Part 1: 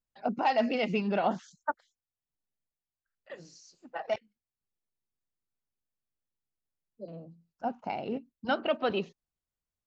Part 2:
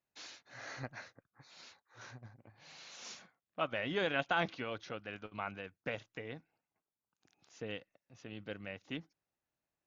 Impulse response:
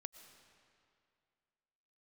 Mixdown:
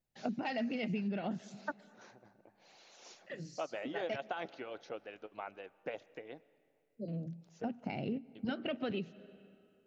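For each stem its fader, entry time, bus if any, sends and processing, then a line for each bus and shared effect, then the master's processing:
−2.5 dB, 0.00 s, send −9 dB, octave-band graphic EQ 125/250/1,000/2,000 Hz +12/+5/−10/+5 dB
−7.5 dB, 0.00 s, muted 0:07.71–0:08.35, send −5 dB, high-pass filter 140 Hz; harmonic and percussive parts rebalanced harmonic −9 dB; flat-topped bell 520 Hz +8 dB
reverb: on, RT60 2.3 s, pre-delay 75 ms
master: downward compressor 6 to 1, threshold −34 dBFS, peak gain reduction 12.5 dB

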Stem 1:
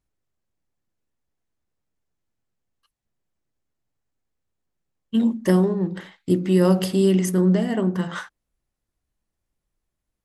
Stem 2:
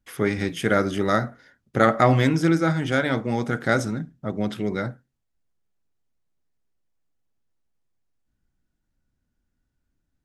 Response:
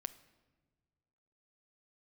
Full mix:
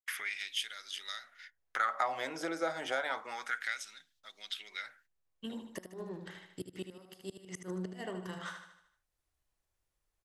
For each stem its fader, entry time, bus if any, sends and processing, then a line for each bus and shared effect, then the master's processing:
−13.0 dB, 0.30 s, no send, echo send −8.5 dB, parametric band 220 Hz −12 dB 1.3 octaves; gate with flip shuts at −17 dBFS, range −25 dB
−1.0 dB, 0.00 s, no send, no echo send, noise gate −48 dBFS, range −33 dB; downward compressor 4 to 1, threshold −28 dBFS, peak gain reduction 13.5 dB; auto-filter high-pass sine 0.29 Hz 570–3,800 Hz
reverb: not used
echo: repeating echo 76 ms, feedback 45%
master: multiband upward and downward compressor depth 40%

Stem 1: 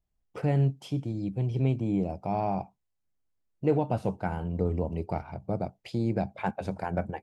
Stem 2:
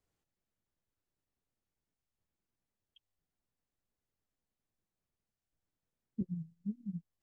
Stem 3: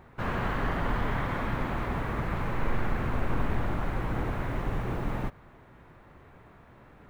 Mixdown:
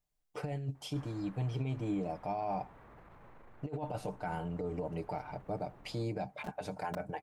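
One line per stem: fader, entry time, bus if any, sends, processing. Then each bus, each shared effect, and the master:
−10.5 dB, 0.00 s, no send, high-shelf EQ 2,000 Hz +10.5 dB; comb filter 6.7 ms, depth 61%
+2.0 dB, 0.25 s, no send, bit reduction 5 bits
−12.0 dB, 0.75 s, no send, brickwall limiter −28 dBFS, peak gain reduction 11.5 dB; automatic ducking −12 dB, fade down 1.30 s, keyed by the first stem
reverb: not used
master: parametric band 720 Hz +6 dB 1.8 octaves; compressor whose output falls as the input rises −32 dBFS, ratio −0.5; brickwall limiter −27.5 dBFS, peak gain reduction 7.5 dB

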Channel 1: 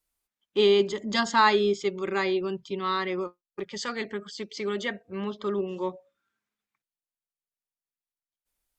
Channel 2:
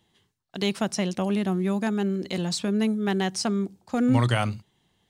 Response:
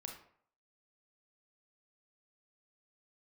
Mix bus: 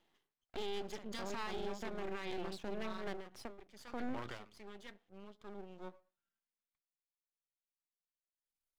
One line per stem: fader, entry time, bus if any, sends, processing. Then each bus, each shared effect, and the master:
0:02.43 −11 dB → 0:03.03 −19.5 dB → 0:05.42 −19.5 dB → 0:06.14 −12.5 dB, 0.00 s, send −17.5 dB, no processing
−0.5 dB, 0.00 s, no send, three-way crossover with the lows and the highs turned down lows −21 dB, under 250 Hz, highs −22 dB, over 3,400 Hz; every ending faded ahead of time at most 120 dB per second; automatic ducking −6 dB, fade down 0.95 s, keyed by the first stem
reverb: on, RT60 0.60 s, pre-delay 28 ms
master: half-wave rectification; brickwall limiter −30 dBFS, peak gain reduction 11.5 dB

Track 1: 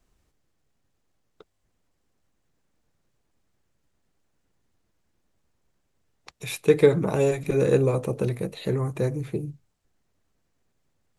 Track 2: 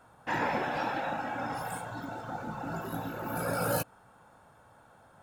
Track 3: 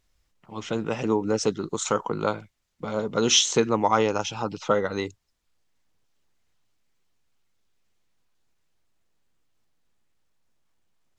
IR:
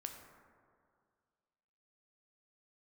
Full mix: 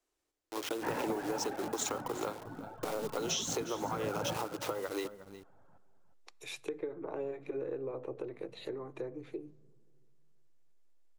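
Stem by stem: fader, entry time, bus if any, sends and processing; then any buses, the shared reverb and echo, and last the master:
−8.0 dB, 0.00 s, bus A, send −15 dB, no echo send, treble cut that deepens with the level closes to 1,600 Hz, closed at −21.5 dBFS; downward compressor, threshold −22 dBFS, peak gain reduction 11 dB
−4.5 dB, 0.55 s, no bus, no send, echo send −10.5 dB, reverb reduction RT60 1.4 s; low-pass filter 2,000 Hz 12 dB per octave
+2.5 dB, 0.00 s, bus A, send −21.5 dB, echo send −19.5 dB, hold until the input has moved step −33 dBFS; downward compressor 6 to 1, threshold −28 dBFS, peak gain reduction 13 dB
bus A: 0.0 dB, Butterworth high-pass 290 Hz 48 dB per octave; downward compressor 4 to 1, threshold −32 dBFS, peak gain reduction 8 dB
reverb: on, RT60 2.1 s, pre-delay 7 ms
echo: single-tap delay 359 ms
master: parametric band 1,700 Hz −3 dB 2.2 octaves

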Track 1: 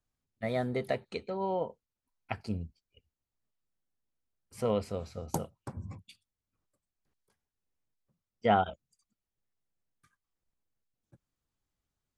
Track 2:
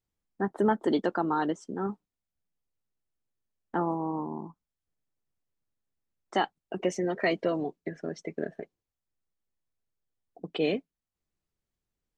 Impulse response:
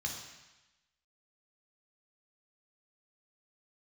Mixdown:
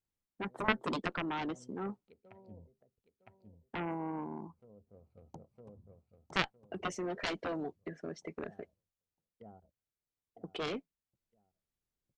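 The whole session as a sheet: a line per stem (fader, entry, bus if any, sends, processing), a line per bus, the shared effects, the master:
−17.5 dB, 0.00 s, no send, echo send −6.5 dB, adaptive Wiener filter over 25 samples; noise gate with hold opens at −53 dBFS; treble cut that deepens with the level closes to 480 Hz, closed at −28.5 dBFS; automatic ducking −14 dB, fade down 0.55 s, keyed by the second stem
+0.5 dB, 0.00 s, no send, no echo send, harmonic generator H 3 −6 dB, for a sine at −12.5 dBFS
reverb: not used
echo: repeating echo 959 ms, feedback 26%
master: no processing

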